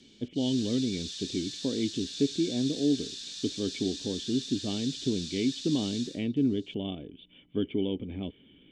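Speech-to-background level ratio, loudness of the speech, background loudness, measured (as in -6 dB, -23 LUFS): 6.5 dB, -31.5 LUFS, -38.0 LUFS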